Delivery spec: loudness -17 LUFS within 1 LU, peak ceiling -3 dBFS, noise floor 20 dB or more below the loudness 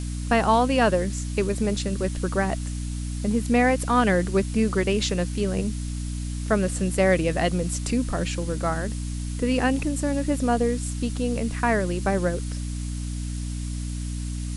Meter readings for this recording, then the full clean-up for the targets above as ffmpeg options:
hum 60 Hz; harmonics up to 300 Hz; hum level -27 dBFS; noise floor -30 dBFS; noise floor target -45 dBFS; loudness -25.0 LUFS; peak -7.5 dBFS; loudness target -17.0 LUFS
-> -af "bandreject=f=60:t=h:w=6,bandreject=f=120:t=h:w=6,bandreject=f=180:t=h:w=6,bandreject=f=240:t=h:w=6,bandreject=f=300:t=h:w=6"
-af "afftdn=nr=15:nf=-30"
-af "volume=8dB,alimiter=limit=-3dB:level=0:latency=1"

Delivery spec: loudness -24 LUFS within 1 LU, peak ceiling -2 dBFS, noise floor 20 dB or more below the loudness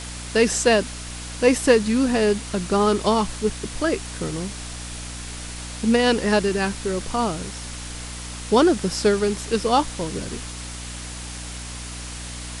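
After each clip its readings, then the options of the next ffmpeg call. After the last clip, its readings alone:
hum 60 Hz; harmonics up to 300 Hz; hum level -34 dBFS; noise floor -34 dBFS; noise floor target -42 dBFS; loudness -22.0 LUFS; peak -2.0 dBFS; loudness target -24.0 LUFS
-> -af "bandreject=f=60:t=h:w=4,bandreject=f=120:t=h:w=4,bandreject=f=180:t=h:w=4,bandreject=f=240:t=h:w=4,bandreject=f=300:t=h:w=4"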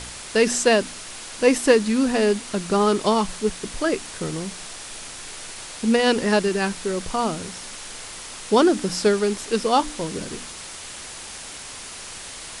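hum none; noise floor -37 dBFS; noise floor target -42 dBFS
-> -af "afftdn=nr=6:nf=-37"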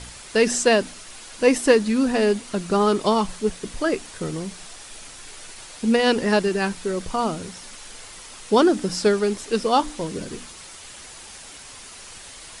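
noise floor -42 dBFS; loudness -21.5 LUFS; peak -2.5 dBFS; loudness target -24.0 LUFS
-> -af "volume=-2.5dB"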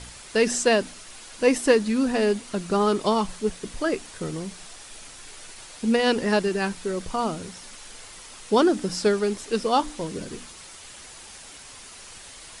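loudness -24.0 LUFS; peak -5.0 dBFS; noise floor -44 dBFS

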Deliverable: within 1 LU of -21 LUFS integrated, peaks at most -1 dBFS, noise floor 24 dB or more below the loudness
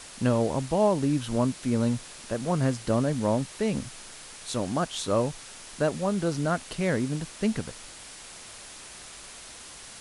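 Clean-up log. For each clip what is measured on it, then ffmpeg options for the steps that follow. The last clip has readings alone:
noise floor -45 dBFS; noise floor target -52 dBFS; loudness -27.5 LUFS; peak -11.0 dBFS; loudness target -21.0 LUFS
-> -af "afftdn=nr=7:nf=-45"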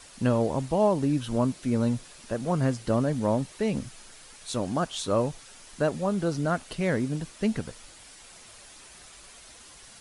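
noise floor -50 dBFS; noise floor target -52 dBFS
-> -af "afftdn=nr=6:nf=-50"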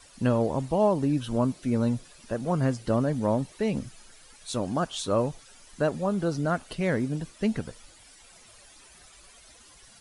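noise floor -54 dBFS; loudness -28.0 LUFS; peak -11.5 dBFS; loudness target -21.0 LUFS
-> -af "volume=7dB"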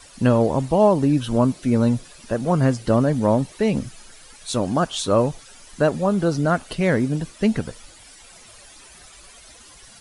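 loudness -21.0 LUFS; peak -4.5 dBFS; noise floor -47 dBFS

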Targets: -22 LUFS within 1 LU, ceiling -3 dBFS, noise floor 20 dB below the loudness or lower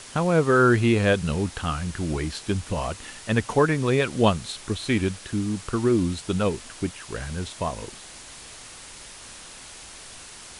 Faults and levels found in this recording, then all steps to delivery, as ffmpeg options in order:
noise floor -43 dBFS; noise floor target -45 dBFS; loudness -24.5 LUFS; peak -6.0 dBFS; loudness target -22.0 LUFS
-> -af "afftdn=nr=6:nf=-43"
-af "volume=2.5dB"

